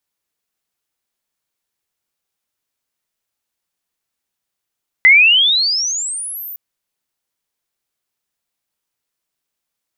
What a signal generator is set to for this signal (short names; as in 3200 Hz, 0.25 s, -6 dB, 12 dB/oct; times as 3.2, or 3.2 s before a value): chirp logarithmic 2000 Hz -> 15000 Hz -3.5 dBFS -> -27 dBFS 1.51 s